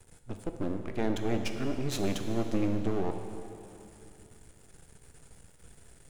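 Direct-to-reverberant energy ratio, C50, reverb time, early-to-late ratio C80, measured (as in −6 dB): 5.0 dB, 6.0 dB, 2.9 s, 7.0 dB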